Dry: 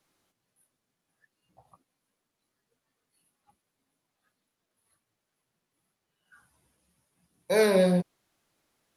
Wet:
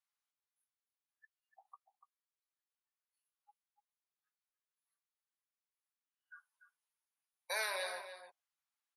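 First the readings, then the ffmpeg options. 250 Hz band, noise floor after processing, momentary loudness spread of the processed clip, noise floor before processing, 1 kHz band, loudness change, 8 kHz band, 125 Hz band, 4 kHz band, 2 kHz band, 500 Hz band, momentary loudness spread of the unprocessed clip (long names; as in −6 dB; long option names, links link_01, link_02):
below −40 dB, below −85 dBFS, 16 LU, −83 dBFS, −8.0 dB, −15.5 dB, −6.0 dB, below −40 dB, −5.5 dB, −5.5 dB, −21.5 dB, 10 LU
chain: -filter_complex "[0:a]afftdn=noise_reduction=22:noise_floor=-50,highpass=frequency=880:width=0.5412,highpass=frequency=880:width=1.3066,acompressor=threshold=-46dB:ratio=2,asplit=2[link_01][link_02];[link_02]adelay=291.5,volume=-10dB,highshelf=frequency=4000:gain=-6.56[link_03];[link_01][link_03]amix=inputs=2:normalize=0,volume=3.5dB"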